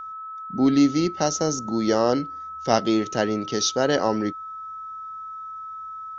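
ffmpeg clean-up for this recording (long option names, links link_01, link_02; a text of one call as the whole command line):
ffmpeg -i in.wav -af "bandreject=frequency=1300:width=30" out.wav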